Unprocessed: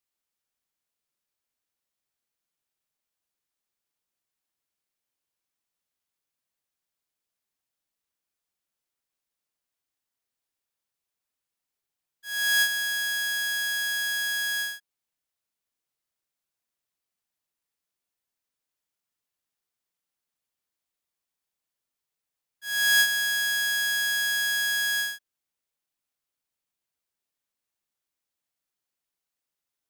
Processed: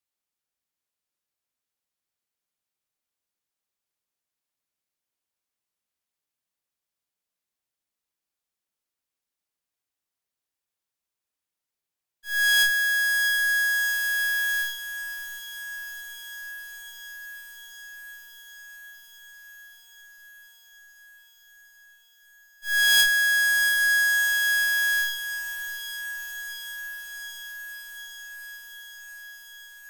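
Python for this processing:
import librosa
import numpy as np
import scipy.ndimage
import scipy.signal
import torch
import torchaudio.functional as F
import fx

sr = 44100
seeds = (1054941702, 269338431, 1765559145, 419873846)

y = fx.cheby_harmonics(x, sr, harmonics=(3, 4, 6, 8), levels_db=(-20, -7, -12, -7), full_scale_db=-13.0)
y = fx.echo_diffused(y, sr, ms=737, feedback_pct=78, wet_db=-10.0)
y = y * 10.0 ** (1.0 / 20.0)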